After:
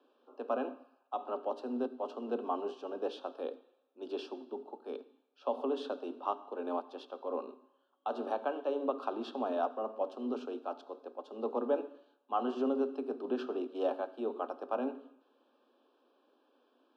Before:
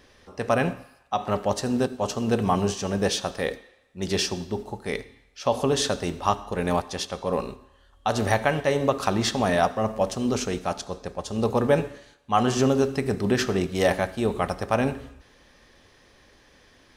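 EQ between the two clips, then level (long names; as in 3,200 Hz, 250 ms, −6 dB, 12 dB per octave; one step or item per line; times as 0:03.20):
Butterworth high-pass 240 Hz 96 dB per octave
Butterworth band-reject 2,000 Hz, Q 1.6
high-frequency loss of the air 450 metres
−9.0 dB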